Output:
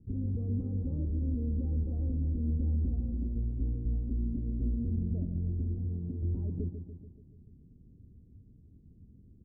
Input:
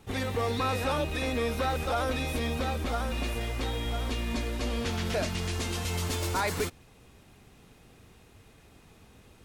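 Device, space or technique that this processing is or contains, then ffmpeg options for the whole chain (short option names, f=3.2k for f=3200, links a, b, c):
the neighbour's flat through the wall: -filter_complex "[0:a]asettb=1/sr,asplit=3[a][b][c];[a]atrim=end=5.784[d];[b]atrim=start=5.78:end=6.22,asetpts=PTS-STARTPTS,afade=t=in:d=0.004:c=qsin,afade=t=out:st=0.436:d=0.004:c=qsin,highpass=99[e];[c]atrim=start=6.216[f];[d][e]acrossfade=d=0.004:c1=hsin:c2=qsin[g];[g][f]acrossfade=d=0.004:c1=qsin:c2=hsin,lowpass=f=280:w=0.5412,lowpass=f=280:w=1.3066,equalizer=f=81:t=o:w=0.77:g=3,aecho=1:1:144|288|432|576|720|864|1008:0.335|0.198|0.117|0.0688|0.0406|0.0239|0.0141"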